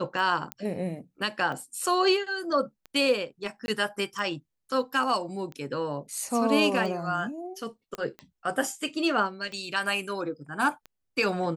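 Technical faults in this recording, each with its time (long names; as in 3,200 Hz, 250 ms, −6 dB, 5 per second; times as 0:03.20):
scratch tick 45 rpm
0:00.52: click −15 dBFS
0:03.66–0:03.68: drop-out 21 ms
0:07.95: click −20 dBFS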